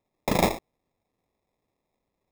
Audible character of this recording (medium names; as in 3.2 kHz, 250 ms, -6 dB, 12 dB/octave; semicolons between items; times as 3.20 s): aliases and images of a low sample rate 1.5 kHz, jitter 0%